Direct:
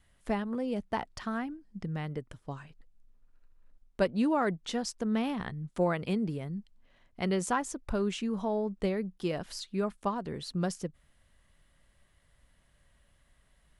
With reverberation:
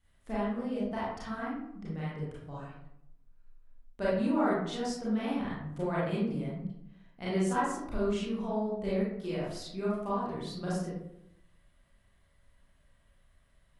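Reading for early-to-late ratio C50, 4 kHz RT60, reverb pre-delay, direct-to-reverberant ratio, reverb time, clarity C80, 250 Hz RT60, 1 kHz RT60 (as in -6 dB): -1.5 dB, 0.40 s, 28 ms, -9.0 dB, 0.80 s, 3.5 dB, 0.95 s, 0.70 s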